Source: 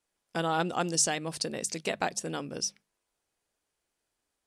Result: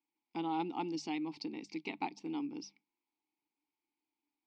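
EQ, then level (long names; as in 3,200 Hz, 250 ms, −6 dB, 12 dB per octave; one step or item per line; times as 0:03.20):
formant filter u
transistor ladder low-pass 5,500 Hz, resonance 55%
+15.0 dB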